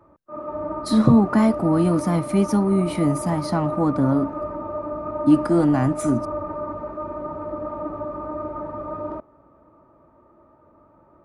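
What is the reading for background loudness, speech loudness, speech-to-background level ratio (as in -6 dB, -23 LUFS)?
-30.5 LUFS, -20.5 LUFS, 10.0 dB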